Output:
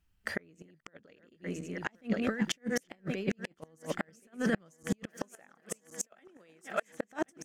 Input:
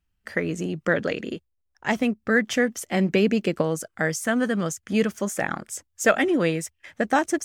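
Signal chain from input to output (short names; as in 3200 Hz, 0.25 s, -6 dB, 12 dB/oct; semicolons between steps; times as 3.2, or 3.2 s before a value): regenerating reverse delay 0.537 s, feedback 68%, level -13 dB; 5.06–7.12 HPF 390 Hz 6 dB/oct; negative-ratio compressor -25 dBFS, ratio -0.5; flipped gate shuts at -17 dBFS, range -34 dB; gain -1 dB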